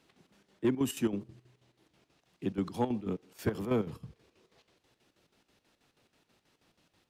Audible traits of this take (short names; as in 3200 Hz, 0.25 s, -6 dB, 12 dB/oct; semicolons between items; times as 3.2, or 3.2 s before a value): chopped level 6.2 Hz, depth 65%, duty 65%